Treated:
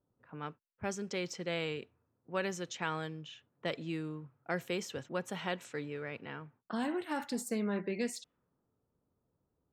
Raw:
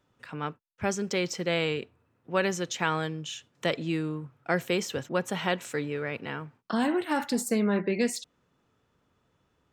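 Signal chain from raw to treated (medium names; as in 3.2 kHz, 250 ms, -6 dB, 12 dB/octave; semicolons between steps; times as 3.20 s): level-controlled noise filter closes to 720 Hz, open at -26.5 dBFS; trim -8.5 dB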